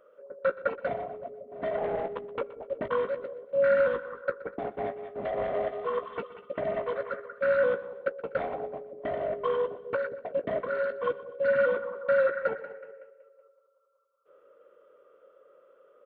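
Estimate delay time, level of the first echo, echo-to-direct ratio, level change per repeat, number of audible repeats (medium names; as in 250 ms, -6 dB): 123 ms, -18.0 dB, -17.0 dB, -6.5 dB, 3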